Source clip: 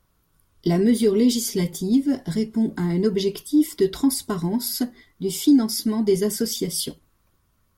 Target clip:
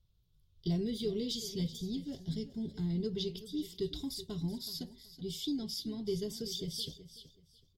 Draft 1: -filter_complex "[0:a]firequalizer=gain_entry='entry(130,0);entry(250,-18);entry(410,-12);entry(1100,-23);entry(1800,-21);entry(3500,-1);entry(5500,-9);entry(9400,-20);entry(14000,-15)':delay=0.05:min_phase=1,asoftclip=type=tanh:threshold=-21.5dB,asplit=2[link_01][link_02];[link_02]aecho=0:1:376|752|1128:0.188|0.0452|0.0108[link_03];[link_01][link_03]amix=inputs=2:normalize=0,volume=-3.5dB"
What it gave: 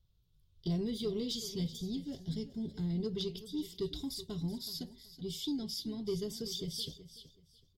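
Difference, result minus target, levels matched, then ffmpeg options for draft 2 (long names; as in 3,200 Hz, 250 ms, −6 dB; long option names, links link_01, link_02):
soft clipping: distortion +16 dB
-filter_complex "[0:a]firequalizer=gain_entry='entry(130,0);entry(250,-18);entry(410,-12);entry(1100,-23);entry(1800,-21);entry(3500,-1);entry(5500,-9);entry(9400,-20);entry(14000,-15)':delay=0.05:min_phase=1,asoftclip=type=tanh:threshold=-13dB,asplit=2[link_01][link_02];[link_02]aecho=0:1:376|752|1128:0.188|0.0452|0.0108[link_03];[link_01][link_03]amix=inputs=2:normalize=0,volume=-3.5dB"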